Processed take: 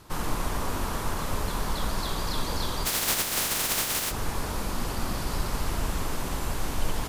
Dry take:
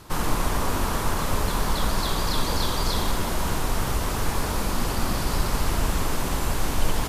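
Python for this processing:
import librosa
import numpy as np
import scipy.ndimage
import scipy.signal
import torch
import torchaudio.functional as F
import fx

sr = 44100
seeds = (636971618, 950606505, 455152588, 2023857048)

y = fx.spec_flatten(x, sr, power=0.16, at=(2.85, 4.1), fade=0.02)
y = y * 10.0 ** (-5.0 / 20.0)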